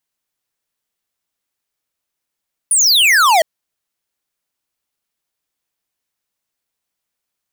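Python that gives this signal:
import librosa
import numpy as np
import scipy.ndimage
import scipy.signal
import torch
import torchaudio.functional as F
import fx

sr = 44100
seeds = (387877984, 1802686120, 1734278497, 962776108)

y = fx.laser_zap(sr, level_db=-10.5, start_hz=10000.0, end_hz=610.0, length_s=0.71, wave='square')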